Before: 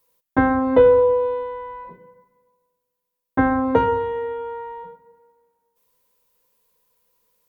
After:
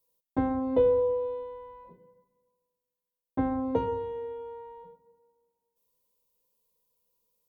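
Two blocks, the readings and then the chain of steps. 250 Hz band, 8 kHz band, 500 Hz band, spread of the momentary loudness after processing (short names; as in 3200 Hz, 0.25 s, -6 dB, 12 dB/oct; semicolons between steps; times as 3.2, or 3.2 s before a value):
-9.0 dB, n/a, -10.0 dB, 20 LU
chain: bell 1600 Hz -14 dB 1.1 oct; gain -8.5 dB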